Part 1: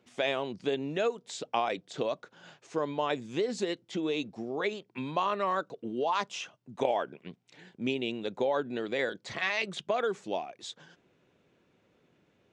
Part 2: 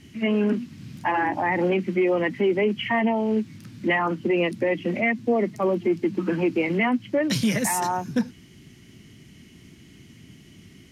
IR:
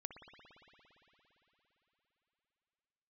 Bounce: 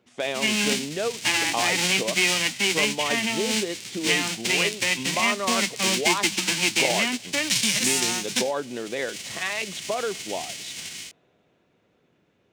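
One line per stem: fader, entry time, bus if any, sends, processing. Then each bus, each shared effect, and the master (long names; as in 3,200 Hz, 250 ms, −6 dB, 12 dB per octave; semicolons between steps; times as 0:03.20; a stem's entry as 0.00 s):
+1.0 dB, 0.00 s, send −18 dB, no processing
+1.0 dB, 0.20 s, no send, spectral envelope flattened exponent 0.3; flat-topped bell 4,200 Hz +13.5 dB 2.5 octaves; automatic gain control gain up to 8.5 dB; automatic ducking −8 dB, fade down 0.35 s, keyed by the first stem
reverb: on, RT60 4.0 s, pre-delay 57 ms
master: no processing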